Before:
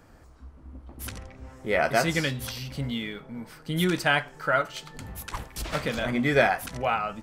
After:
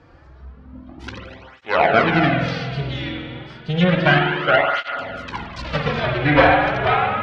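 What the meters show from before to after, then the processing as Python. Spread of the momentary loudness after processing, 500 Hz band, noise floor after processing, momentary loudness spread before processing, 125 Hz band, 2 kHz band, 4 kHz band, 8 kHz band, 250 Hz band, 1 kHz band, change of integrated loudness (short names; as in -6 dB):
19 LU, +8.0 dB, -45 dBFS, 17 LU, +10.0 dB, +8.0 dB, +6.5 dB, under -10 dB, +8.0 dB, +10.0 dB, +8.5 dB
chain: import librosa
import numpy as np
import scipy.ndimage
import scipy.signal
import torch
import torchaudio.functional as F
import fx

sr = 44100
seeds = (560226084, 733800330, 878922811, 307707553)

p1 = fx.cheby_harmonics(x, sr, harmonics=(6, 8), levels_db=(-7, -18), full_scale_db=-7.5)
p2 = scipy.signal.sosfilt(scipy.signal.butter(4, 4700.0, 'lowpass', fs=sr, output='sos'), p1)
p3 = fx.env_lowpass_down(p2, sr, base_hz=2600.0, full_db=-19.0)
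p4 = p3 + fx.echo_single(p3, sr, ms=246, db=-17.0, dry=0)
p5 = fx.rev_spring(p4, sr, rt60_s=1.9, pass_ms=(47,), chirp_ms=30, drr_db=1.0)
p6 = fx.flanger_cancel(p5, sr, hz=0.31, depth_ms=5.0)
y = F.gain(torch.from_numpy(p6), 7.5).numpy()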